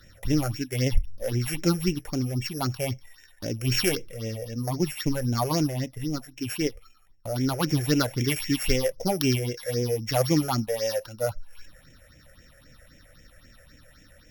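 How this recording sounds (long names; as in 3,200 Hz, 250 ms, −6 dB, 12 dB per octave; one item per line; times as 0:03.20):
a buzz of ramps at a fixed pitch in blocks of 8 samples
phaser sweep stages 6, 3.8 Hz, lowest notch 260–1,200 Hz
Opus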